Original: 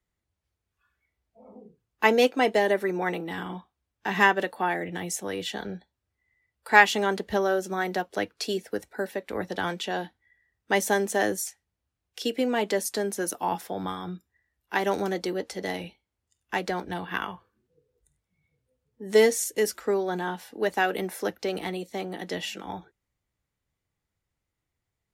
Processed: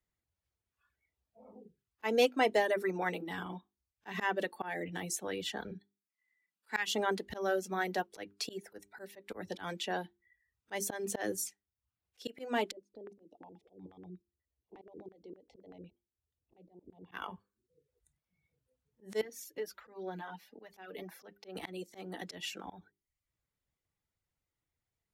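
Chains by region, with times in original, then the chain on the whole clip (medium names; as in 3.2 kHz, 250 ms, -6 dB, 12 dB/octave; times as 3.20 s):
5.71–6.90 s: steep high-pass 170 Hz + peaking EQ 590 Hz -14 dB 1.1 oct
12.71–17.12 s: compression 8:1, threshold -40 dBFS + Butterworth band-stop 1.5 kHz, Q 0.55 + LFO low-pass square 8.3 Hz 390–1700 Hz
19.21–21.56 s: peaking EQ 8.4 kHz -14.5 dB 0.91 oct + compression 3:1, threshold -29 dBFS + flange 1.4 Hz, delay 3.8 ms, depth 3.5 ms, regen +34%
whole clip: hum notches 50/100/150/200/250/300/350/400 Hz; reverb removal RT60 0.53 s; slow attack 154 ms; trim -5 dB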